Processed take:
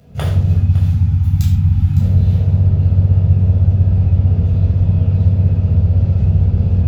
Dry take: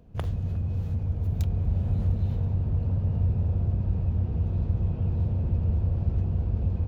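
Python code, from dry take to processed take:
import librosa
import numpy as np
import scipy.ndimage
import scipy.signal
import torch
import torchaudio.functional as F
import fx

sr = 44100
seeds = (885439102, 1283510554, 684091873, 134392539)

p1 = fx.spec_erase(x, sr, start_s=0.55, length_s=1.45, low_hz=340.0, high_hz=740.0)
p2 = fx.rider(p1, sr, range_db=10, speed_s=0.5)
p3 = p1 + (p2 * 10.0 ** (3.0 / 20.0))
p4 = scipy.signal.sosfilt(scipy.signal.butter(2, 60.0, 'highpass', fs=sr, output='sos'), p3)
p5 = fx.high_shelf(p4, sr, hz=2100.0, db=10.0)
p6 = fx.notch(p5, sr, hz=1100.0, q=8.8)
p7 = p6 + 10.0 ** (-14.5 / 20.0) * np.pad(p6, (int(559 * sr / 1000.0), 0))[:len(p6)]
p8 = fx.room_shoebox(p7, sr, seeds[0], volume_m3=1000.0, walls='furnished', distance_m=6.9)
y = p8 * 10.0 ** (-8.0 / 20.0)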